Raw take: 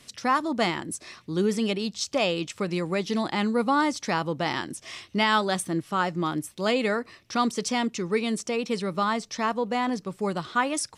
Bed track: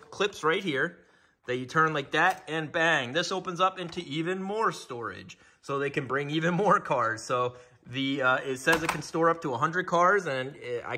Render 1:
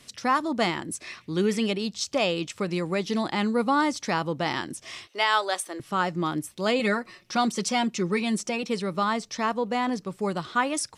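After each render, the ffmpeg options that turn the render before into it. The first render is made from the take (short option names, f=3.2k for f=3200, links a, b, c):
-filter_complex "[0:a]asettb=1/sr,asplit=3[a][b][c];[a]atrim=end=0.954[d];[b]atrim=start=0.95:end=1.66,asetpts=PTS-STARTPTS,afade=t=in:d=0.004:c=qsin,afade=t=out:st=0.706:d=0.004:c=qsin,equalizer=f=2.3k:w=1.4:g=7[e];[c]atrim=start=1.656[f];[d][e]acrossfade=d=0.004:c1=hsin:c2=qsin[g];[g][f]acrossfade=d=0.004:c1=qsin:c2=hsin,asettb=1/sr,asplit=3[h][i][j];[h]atrim=end=5.074[k];[i]atrim=start=5.07:end=5.8,asetpts=PTS-STARTPTS,afade=t=in:d=0.004:c=qsin,afade=t=out:st=0.726:d=0.004:c=qsin,highpass=f=430:w=0.5412,highpass=f=430:w=1.3066[l];[j]atrim=start=5.796[m];[k][l]acrossfade=d=0.004:c1=hsin:c2=qsin[n];[n][m]acrossfade=d=0.004:c1=qsin:c2=hsin,asettb=1/sr,asplit=3[o][p][q];[o]atrim=end=6.794[r];[p]atrim=start=6.79:end=8.63,asetpts=PTS-STARTPTS,afade=t=in:d=0.004:c=qsin,afade=t=out:st=1.836:d=0.004:c=qsin,aecho=1:1:5.5:0.65,atrim=end_sample=81144[s];[q]atrim=start=8.626[t];[r][s]acrossfade=d=0.004:c1=hsin:c2=qsin[u];[u][t]acrossfade=d=0.004:c1=qsin:c2=hsin"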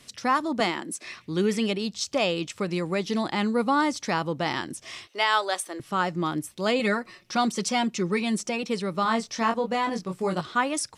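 -filter_complex "[0:a]asettb=1/sr,asplit=3[a][b][c];[a]atrim=end=0.604[d];[b]atrim=start=0.6:end=1.05,asetpts=PTS-STARTPTS,afade=t=in:d=0.004:c=qsin,afade=t=out:st=0.446:d=0.004:c=qsin,highpass=f=190:w=0.5412,highpass=f=190:w=1.3066[e];[c]atrim=start=1.046[f];[d][e]acrossfade=d=0.004:c1=hsin:c2=qsin[g];[g][f]acrossfade=d=0.004:c1=qsin:c2=hsin,asettb=1/sr,asplit=3[h][i][j];[h]atrim=end=9.034[k];[i]atrim=start=9.03:end=10.41,asetpts=PTS-STARTPTS,afade=t=in:d=0.004:c=qsin,afade=t=out:st=1.376:d=0.004:c=qsin,asplit=2[l][m];[m]adelay=22,volume=-4dB[n];[l][n]amix=inputs=2:normalize=0,atrim=end_sample=60858[o];[j]atrim=start=10.406[p];[k][o]acrossfade=d=0.004:c1=hsin:c2=qsin[q];[q][p]acrossfade=d=0.004:c1=qsin:c2=hsin"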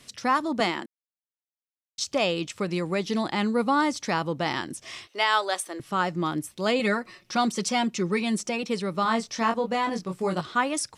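-filter_complex "[0:a]asplit=3[a][b][c];[a]atrim=end=0.86,asetpts=PTS-STARTPTS,afade=t=out:st=0.856:d=0.004:c=hsin[d];[b]atrim=start=0.86:end=1.98,asetpts=PTS-STARTPTS,volume=0[e];[c]atrim=start=1.98,asetpts=PTS-STARTPTS,afade=t=in:d=0.004:c=hsin[f];[d][e][f]concat=n=3:v=0:a=1"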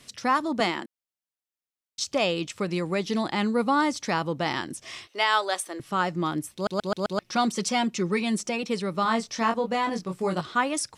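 -filter_complex "[0:a]asplit=6[a][b][c][d][e][f];[a]atrim=end=6.672[g];[b]atrim=start=6.538:end=6.672[h];[c]atrim=start=6.538:end=6.672[i];[d]atrim=start=6.538:end=6.672[j];[e]atrim=start=6.538:end=6.672[k];[f]atrim=start=7.188[l];[g][h]acrossfade=d=0.004:c1=hsin:c2=hsin[m];[m][i]acrossfade=d=0.004:c1=hsin:c2=hsin[n];[n][j]acrossfade=d=0.004:c1=hsin:c2=hsin[o];[o][k]acrossfade=d=0.004:c1=hsin:c2=hsin[p];[p][l]acrossfade=d=0.004:c1=hsin:c2=hsin"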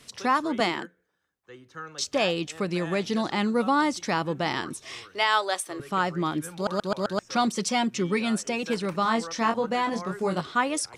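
-filter_complex "[1:a]volume=-16dB[a];[0:a][a]amix=inputs=2:normalize=0"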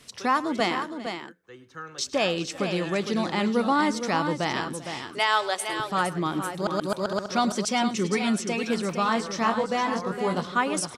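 -af "aecho=1:1:106|392|461:0.119|0.106|0.398"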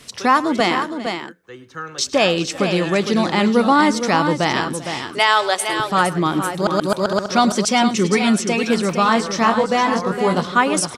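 -af "volume=8.5dB,alimiter=limit=-3dB:level=0:latency=1"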